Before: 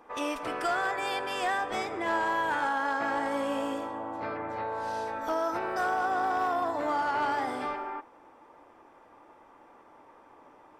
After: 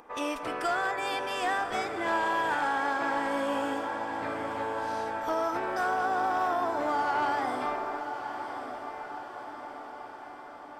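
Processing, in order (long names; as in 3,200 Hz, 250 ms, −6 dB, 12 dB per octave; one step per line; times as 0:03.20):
upward compression, threshold −52 dBFS
on a send: feedback delay with all-pass diffusion 1,090 ms, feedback 60%, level −9 dB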